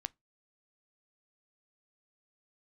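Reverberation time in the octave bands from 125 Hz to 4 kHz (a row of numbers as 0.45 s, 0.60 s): 0.30 s, 0.25 s, 0.20 s, 0.20 s, 0.15 s, 0.15 s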